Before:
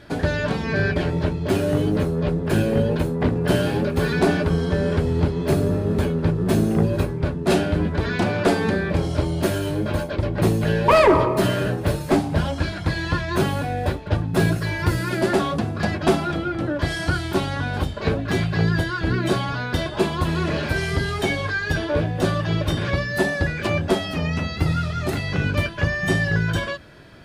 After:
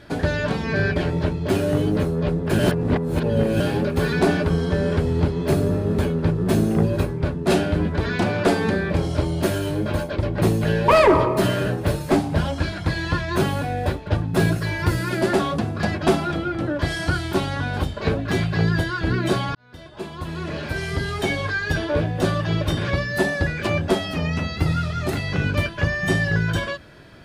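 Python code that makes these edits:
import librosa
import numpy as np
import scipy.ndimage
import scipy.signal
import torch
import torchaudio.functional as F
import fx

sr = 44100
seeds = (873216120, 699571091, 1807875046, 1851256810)

y = fx.edit(x, sr, fx.reverse_span(start_s=2.59, length_s=1.01),
    fx.fade_in_span(start_s=19.55, length_s=1.86), tone=tone)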